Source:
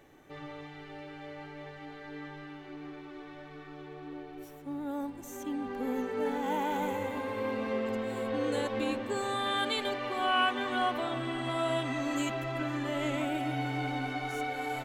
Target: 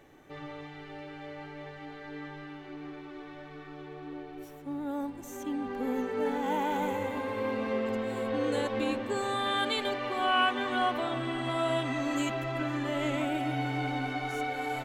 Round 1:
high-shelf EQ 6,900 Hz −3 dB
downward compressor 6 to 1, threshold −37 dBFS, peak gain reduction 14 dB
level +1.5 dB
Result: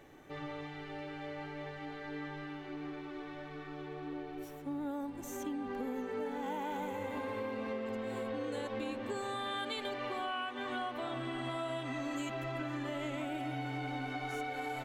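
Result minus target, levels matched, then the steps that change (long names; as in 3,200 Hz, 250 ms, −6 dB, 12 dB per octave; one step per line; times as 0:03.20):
downward compressor: peak gain reduction +14 dB
remove: downward compressor 6 to 1, threshold −37 dBFS, peak gain reduction 14 dB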